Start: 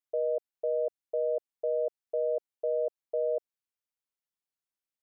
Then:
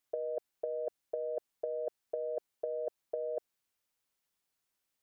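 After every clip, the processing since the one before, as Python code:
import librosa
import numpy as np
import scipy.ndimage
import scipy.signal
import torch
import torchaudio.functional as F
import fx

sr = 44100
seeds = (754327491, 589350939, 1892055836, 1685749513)

y = fx.over_compress(x, sr, threshold_db=-34.0, ratio=-0.5)
y = y * 10.0 ** (1.0 / 20.0)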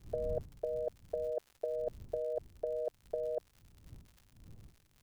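y = fx.dmg_wind(x, sr, seeds[0], corner_hz=100.0, level_db=-52.0)
y = fx.dmg_crackle(y, sr, seeds[1], per_s=120.0, level_db=-48.0)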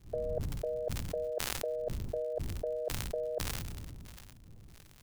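y = fx.sustainer(x, sr, db_per_s=21.0)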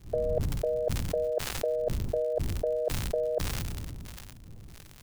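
y = np.clip(10.0 ** (23.0 / 20.0) * x, -1.0, 1.0) / 10.0 ** (23.0 / 20.0)
y = y * 10.0 ** (6.5 / 20.0)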